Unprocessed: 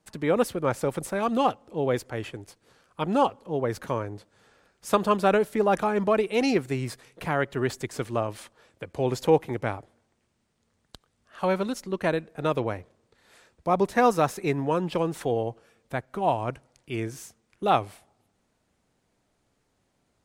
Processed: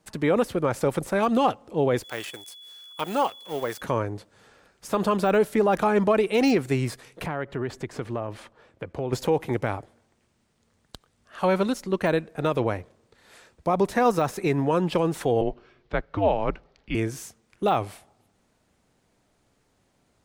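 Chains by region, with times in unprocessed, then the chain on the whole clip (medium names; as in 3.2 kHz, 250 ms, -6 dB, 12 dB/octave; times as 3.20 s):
2.03–3.80 s: companding laws mixed up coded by A + tilt EQ +4.5 dB/octave + whistle 3.4 kHz -48 dBFS
7.26–9.13 s: low-pass 1.9 kHz 6 dB/octave + compression 3:1, threshold -31 dBFS
15.41–16.95 s: low-pass 4.7 kHz 24 dB/octave + frequency shift -94 Hz
whole clip: de-esser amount 85%; peak limiter -16.5 dBFS; trim +4.5 dB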